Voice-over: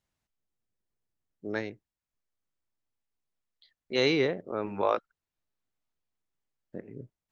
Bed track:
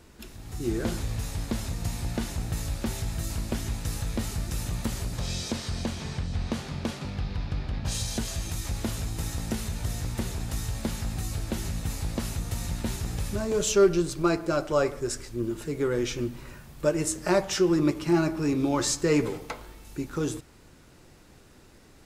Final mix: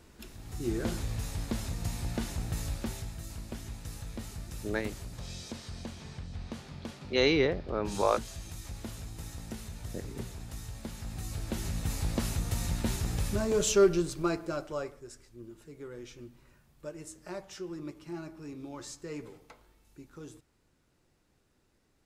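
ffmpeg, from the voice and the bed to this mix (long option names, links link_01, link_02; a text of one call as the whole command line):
ffmpeg -i stem1.wav -i stem2.wav -filter_complex "[0:a]adelay=3200,volume=0dB[link_01];[1:a]volume=6.5dB,afade=type=out:start_time=2.69:duration=0.47:silence=0.446684,afade=type=in:start_time=10.93:duration=1.15:silence=0.316228,afade=type=out:start_time=13.4:duration=1.63:silence=0.141254[link_02];[link_01][link_02]amix=inputs=2:normalize=0" out.wav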